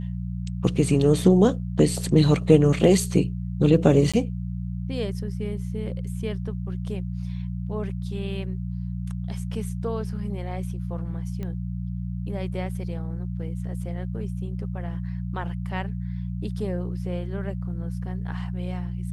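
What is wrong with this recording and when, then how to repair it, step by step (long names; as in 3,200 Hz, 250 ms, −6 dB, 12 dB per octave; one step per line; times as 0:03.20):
mains hum 60 Hz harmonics 3 −30 dBFS
0:04.12–0:04.14: drop-out 16 ms
0:11.43: click −22 dBFS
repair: click removal
hum removal 60 Hz, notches 3
repair the gap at 0:04.12, 16 ms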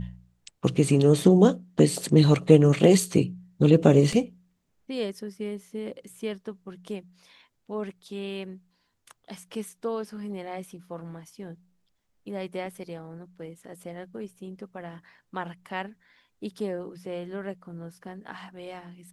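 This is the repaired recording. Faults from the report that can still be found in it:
none of them is left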